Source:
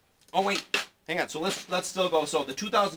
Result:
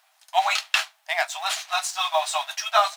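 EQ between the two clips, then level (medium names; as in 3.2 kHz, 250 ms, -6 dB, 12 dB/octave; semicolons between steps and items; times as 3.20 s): brick-wall FIR high-pass 610 Hz; +6.0 dB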